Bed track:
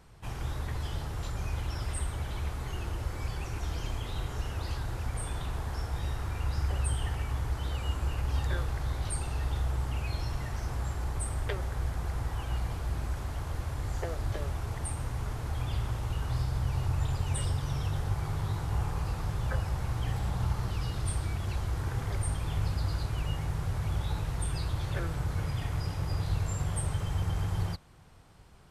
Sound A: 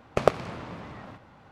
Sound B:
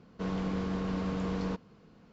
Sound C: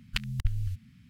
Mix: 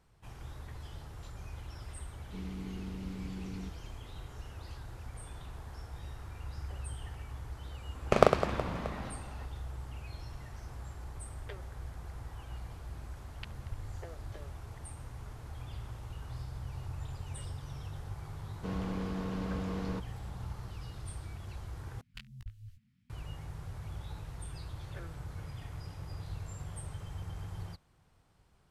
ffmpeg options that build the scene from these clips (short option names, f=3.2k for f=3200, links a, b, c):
-filter_complex "[2:a]asplit=2[a][b];[3:a]asplit=2[c][d];[0:a]volume=-11dB[e];[a]asuperstop=centerf=920:order=20:qfactor=0.61[f];[1:a]aecho=1:1:40|104|206.4|370.2|632.4:0.631|0.398|0.251|0.158|0.1[g];[c]lowpass=4.3k[h];[d]flanger=delay=15.5:depth=7.8:speed=2.7[i];[e]asplit=2[j][k];[j]atrim=end=22.014[l];[i]atrim=end=1.09,asetpts=PTS-STARTPTS,volume=-14dB[m];[k]atrim=start=23.096[n];[f]atrim=end=2.12,asetpts=PTS-STARTPTS,volume=-8.5dB,afade=t=in:d=0.004:c=hsin,afade=t=out:st=2.116:d=0.004:c=hsin,adelay=2130[o];[g]atrim=end=1.51,asetpts=PTS-STARTPTS,volume=-1dB,afade=t=in:d=0.004:c=hsin,afade=t=out:st=1.506:d=0.004:c=hsin,adelay=7950[p];[h]atrim=end=1.09,asetpts=PTS-STARTPTS,volume=-15dB,afade=t=in:d=0.004:c=hsin,afade=t=out:st=1.086:d=0.004:c=hsin,adelay=13270[q];[b]atrim=end=2.12,asetpts=PTS-STARTPTS,volume=-4dB,afade=t=in:d=0.004:c=hsin,afade=t=out:st=2.116:d=0.004:c=hsin,adelay=813204S[r];[l][m]acrossfade=d=0.004:c1=hsin:c2=hsin[s];[s][n]acrossfade=d=0.004:c1=hsin:c2=hsin[t];[t][o][p][q][r]amix=inputs=5:normalize=0"